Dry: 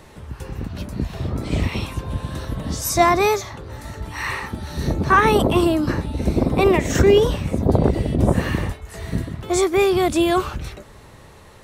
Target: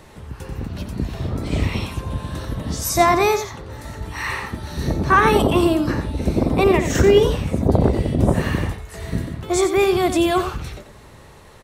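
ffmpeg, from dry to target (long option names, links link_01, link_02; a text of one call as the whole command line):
ffmpeg -i in.wav -af "aecho=1:1:89:0.335" out.wav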